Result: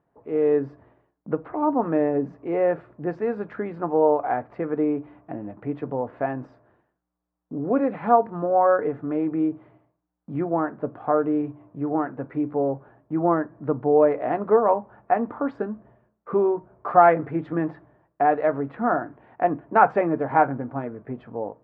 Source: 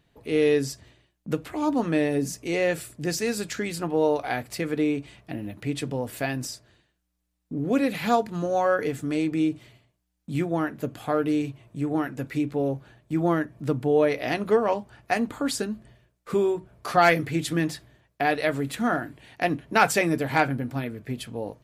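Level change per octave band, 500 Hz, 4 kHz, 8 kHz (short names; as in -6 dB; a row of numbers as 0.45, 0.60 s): +3.5 dB, under -25 dB, under -40 dB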